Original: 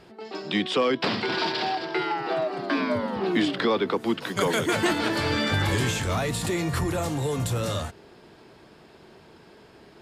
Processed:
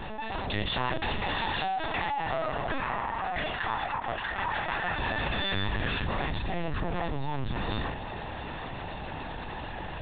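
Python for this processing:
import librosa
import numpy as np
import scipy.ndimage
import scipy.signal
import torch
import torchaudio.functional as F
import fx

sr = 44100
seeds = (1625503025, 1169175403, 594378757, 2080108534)

y = fx.lower_of_two(x, sr, delay_ms=1.1)
y = fx.bandpass_edges(y, sr, low_hz=770.0, high_hz=2200.0, at=(2.78, 4.99))
y = fx.doubler(y, sr, ms=29.0, db=-5.5)
y = fx.lpc_vocoder(y, sr, seeds[0], excitation='pitch_kept', order=10)
y = fx.env_flatten(y, sr, amount_pct=70)
y = y * 10.0 ** (-7.0 / 20.0)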